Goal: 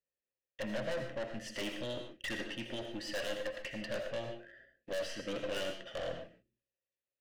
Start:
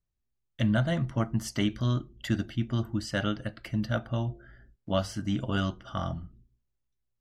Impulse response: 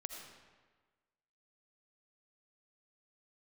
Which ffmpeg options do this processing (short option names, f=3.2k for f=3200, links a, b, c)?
-filter_complex "[0:a]acrossover=split=650|2200[a][b][c];[c]dynaudnorm=f=440:g=7:m=9dB[d];[a][b][d]amix=inputs=3:normalize=0,asettb=1/sr,asplit=3[e][f][g];[e]atrim=end=5.194[h];[f]atrim=start=5.19:end=6.14,asetpts=PTS-STARTPTS,afade=t=in:d=0.004:c=qsin,afade=t=out:st=0.946:d=0.004:c=qsin,aeval=exprs='0.188*(cos(1*acos(clip(val(0)/0.188,-1,1)))-cos(1*PI/2))+0.0237*(cos(6*acos(clip(val(0)/0.188,-1,1)))-cos(6*PI/2))':c=same[i];[g]atrim=start=6.136[j];[h][i]acrossfade=d=0.004:c1=hsin:c2=qsin[k];[k][j]acrossfade=d=0.004:c1=qsin:c2=hsin,asplit=2[l][m];[m]acrusher=bits=6:mix=0:aa=0.000001,volume=-8dB[n];[l][n]amix=inputs=2:normalize=0,asplit=3[o][p][q];[o]bandpass=f=530:t=q:w=8,volume=0dB[r];[p]bandpass=f=1.84k:t=q:w=8,volume=-6dB[s];[q]bandpass=f=2.48k:t=q:w=8,volume=-9dB[t];[r][s][t]amix=inputs=3:normalize=0,aeval=exprs='(tanh(158*val(0)+0.4)-tanh(0.4))/158':c=same[u];[1:a]atrim=start_sample=2205,afade=t=out:st=0.2:d=0.01,atrim=end_sample=9261[v];[u][v]afir=irnorm=-1:irlink=0,volume=13dB"